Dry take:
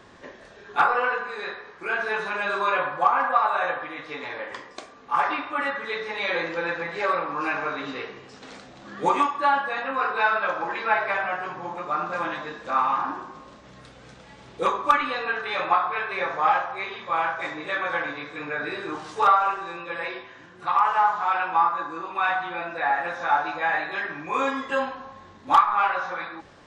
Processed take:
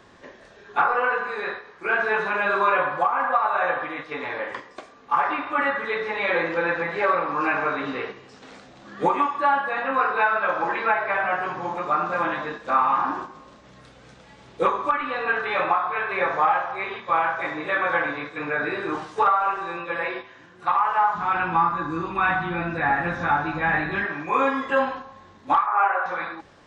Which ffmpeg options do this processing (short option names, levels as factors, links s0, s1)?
-filter_complex "[0:a]asplit=3[s0][s1][s2];[s0]afade=t=out:st=21.14:d=0.02[s3];[s1]asubboost=boost=9:cutoff=200,afade=t=in:st=21.14:d=0.02,afade=t=out:st=24.04:d=0.02[s4];[s2]afade=t=in:st=24.04:d=0.02[s5];[s3][s4][s5]amix=inputs=3:normalize=0,asettb=1/sr,asplit=3[s6][s7][s8];[s6]atrim=end=25.664[s9];[s7]atrim=start=25.66:end=26.06,asetpts=PTS-STARTPTS,afade=t=in:d=0.004:c=qsin,afade=t=out:st=0.396:d=0.004:c=qsin,highpass=f=390:w=0.5412,highpass=f=390:w=1.3066,equalizer=f=410:t=q:w=4:g=7,equalizer=f=720:t=q:w=4:g=7,equalizer=f=1500:t=q:w=4:g=3,lowpass=f=2500:w=0.5412,lowpass=f=2500:w=1.3066[s10];[s8]atrim=start=26.056[s11];[s9][s10]acrossfade=d=0.004:c1=hsin:c2=qsin[s12];[s12][s11]acrossfade=d=0.004:c1=qsin:c2=hsin,agate=range=0.501:threshold=0.0141:ratio=16:detection=peak,acrossover=split=2900[s13][s14];[s14]acompressor=threshold=0.002:ratio=4:attack=1:release=60[s15];[s13][s15]amix=inputs=2:normalize=0,alimiter=limit=0.188:level=0:latency=1:release=425,volume=1.68"